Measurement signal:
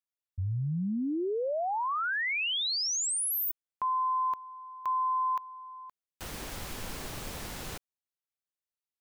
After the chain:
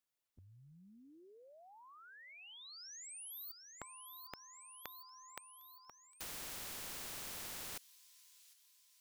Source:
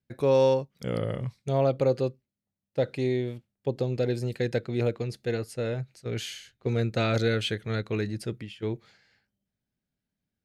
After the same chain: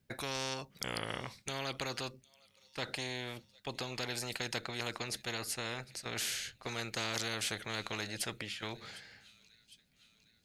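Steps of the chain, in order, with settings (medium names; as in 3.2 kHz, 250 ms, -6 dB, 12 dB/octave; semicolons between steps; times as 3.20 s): feedback echo behind a high-pass 756 ms, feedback 56%, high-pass 4.1 kHz, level -23.5 dB; spectrum-flattening compressor 4:1; trim -4 dB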